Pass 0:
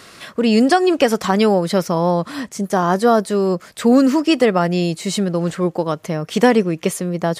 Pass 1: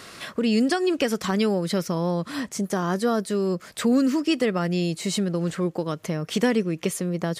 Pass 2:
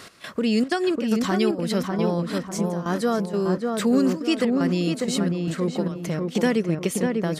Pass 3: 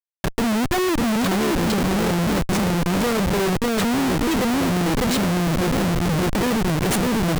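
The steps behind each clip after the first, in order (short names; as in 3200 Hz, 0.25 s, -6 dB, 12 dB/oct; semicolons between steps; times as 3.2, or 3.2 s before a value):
dynamic EQ 790 Hz, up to -8 dB, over -30 dBFS, Q 1.2; in parallel at +3 dB: compressor, threshold -26 dBFS, peak gain reduction 15 dB; on the sum: gain -8.5 dB
step gate "x..xxxxx.xx" 189 bpm -12 dB; on a send: darkening echo 0.597 s, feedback 42%, low-pass 1800 Hz, level -3 dB
in parallel at -6 dB: bit-crush 5-bit; on the sum: Schmitt trigger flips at -29.5 dBFS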